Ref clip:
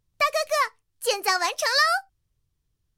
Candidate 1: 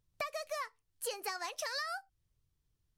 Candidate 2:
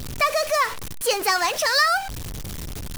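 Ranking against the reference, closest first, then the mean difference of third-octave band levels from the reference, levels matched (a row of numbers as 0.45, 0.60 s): 1, 2; 2.0, 7.0 dB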